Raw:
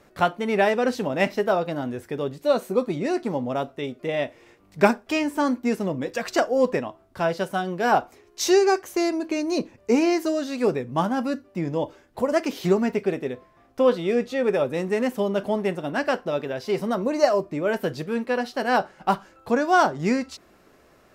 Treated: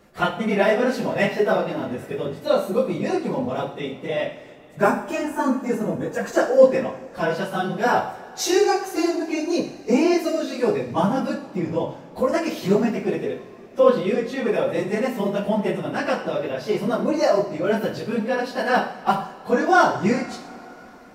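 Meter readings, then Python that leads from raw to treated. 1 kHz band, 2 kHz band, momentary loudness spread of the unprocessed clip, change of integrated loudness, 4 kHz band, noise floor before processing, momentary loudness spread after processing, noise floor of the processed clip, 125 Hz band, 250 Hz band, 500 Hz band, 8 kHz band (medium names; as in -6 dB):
+1.5 dB, +2.0 dB, 9 LU, +2.0 dB, +1.5 dB, -57 dBFS, 9 LU, -43 dBFS, +2.5 dB, +1.5 dB, +2.0 dB, +1.5 dB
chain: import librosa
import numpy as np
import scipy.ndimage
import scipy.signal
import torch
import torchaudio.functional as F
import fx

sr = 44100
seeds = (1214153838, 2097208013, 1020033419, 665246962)

y = fx.phase_scramble(x, sr, seeds[0], window_ms=50)
y = fx.spec_box(y, sr, start_s=4.55, length_s=1.85, low_hz=1900.0, high_hz=5900.0, gain_db=-8)
y = fx.rev_double_slope(y, sr, seeds[1], early_s=0.57, late_s=4.5, knee_db=-20, drr_db=3.0)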